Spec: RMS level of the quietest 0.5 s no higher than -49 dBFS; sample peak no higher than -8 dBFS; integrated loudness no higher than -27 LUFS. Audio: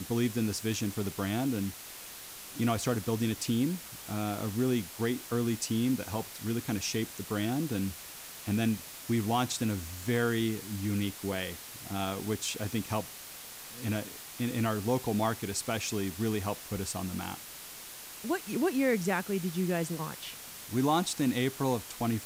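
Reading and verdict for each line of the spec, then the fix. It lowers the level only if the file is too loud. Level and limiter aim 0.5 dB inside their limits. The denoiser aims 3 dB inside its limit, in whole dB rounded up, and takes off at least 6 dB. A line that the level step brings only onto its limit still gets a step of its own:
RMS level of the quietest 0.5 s -46 dBFS: fail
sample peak -17.0 dBFS: OK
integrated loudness -32.5 LUFS: OK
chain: denoiser 6 dB, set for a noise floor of -46 dBFS

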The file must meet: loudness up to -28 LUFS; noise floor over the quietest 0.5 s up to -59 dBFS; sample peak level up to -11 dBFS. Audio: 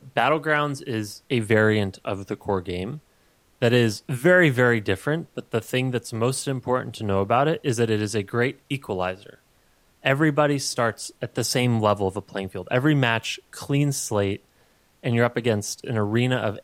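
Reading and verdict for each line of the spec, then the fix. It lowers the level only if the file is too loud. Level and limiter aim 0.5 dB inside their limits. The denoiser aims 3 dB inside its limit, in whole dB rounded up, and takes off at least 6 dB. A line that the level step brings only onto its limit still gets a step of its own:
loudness -23.5 LUFS: fail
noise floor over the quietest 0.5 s -61 dBFS: OK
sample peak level -5.5 dBFS: fail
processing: gain -5 dB; limiter -11.5 dBFS

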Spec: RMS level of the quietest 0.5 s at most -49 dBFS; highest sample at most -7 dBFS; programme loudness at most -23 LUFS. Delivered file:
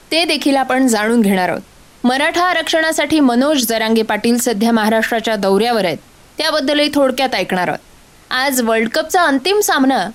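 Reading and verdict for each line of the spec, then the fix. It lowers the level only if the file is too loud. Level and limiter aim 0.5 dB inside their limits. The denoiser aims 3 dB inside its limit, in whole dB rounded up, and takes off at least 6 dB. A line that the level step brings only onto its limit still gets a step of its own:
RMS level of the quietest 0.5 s -44 dBFS: fail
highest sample -4.0 dBFS: fail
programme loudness -14.5 LUFS: fail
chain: gain -9 dB

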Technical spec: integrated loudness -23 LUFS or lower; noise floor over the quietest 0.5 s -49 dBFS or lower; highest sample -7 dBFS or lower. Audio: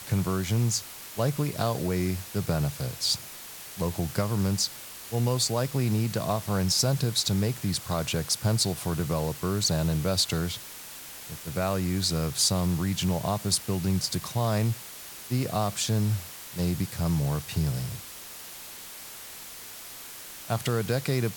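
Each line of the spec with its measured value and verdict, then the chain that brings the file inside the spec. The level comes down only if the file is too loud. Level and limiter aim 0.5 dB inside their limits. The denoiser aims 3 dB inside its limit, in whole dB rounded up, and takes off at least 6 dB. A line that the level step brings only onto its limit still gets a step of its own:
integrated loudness -27.5 LUFS: OK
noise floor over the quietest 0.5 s -43 dBFS: fail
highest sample -11.0 dBFS: OK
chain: denoiser 9 dB, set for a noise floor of -43 dBFS

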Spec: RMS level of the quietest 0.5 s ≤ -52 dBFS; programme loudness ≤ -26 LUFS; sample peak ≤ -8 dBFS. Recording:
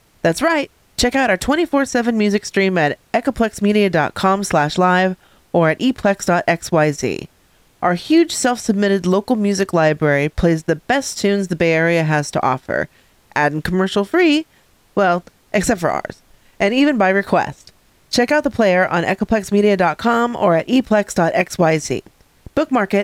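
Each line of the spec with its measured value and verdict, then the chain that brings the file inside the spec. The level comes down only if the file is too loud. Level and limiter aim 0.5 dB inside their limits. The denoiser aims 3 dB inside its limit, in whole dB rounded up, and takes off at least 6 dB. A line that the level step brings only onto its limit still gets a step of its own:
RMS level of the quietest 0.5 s -54 dBFS: OK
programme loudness -17.0 LUFS: fail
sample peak -4.0 dBFS: fail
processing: gain -9.5 dB

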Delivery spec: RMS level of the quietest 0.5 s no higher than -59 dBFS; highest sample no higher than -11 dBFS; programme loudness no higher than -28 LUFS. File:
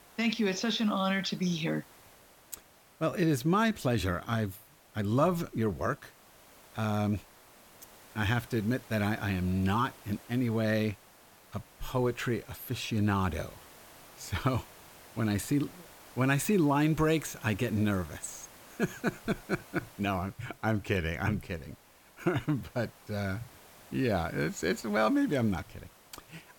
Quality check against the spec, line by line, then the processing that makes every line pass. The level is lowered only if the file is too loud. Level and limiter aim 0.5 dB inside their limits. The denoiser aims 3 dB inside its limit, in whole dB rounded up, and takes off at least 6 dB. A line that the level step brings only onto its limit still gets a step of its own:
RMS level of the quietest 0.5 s -58 dBFS: fail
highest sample -14.0 dBFS: OK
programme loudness -31.5 LUFS: OK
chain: denoiser 6 dB, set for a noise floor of -58 dBFS

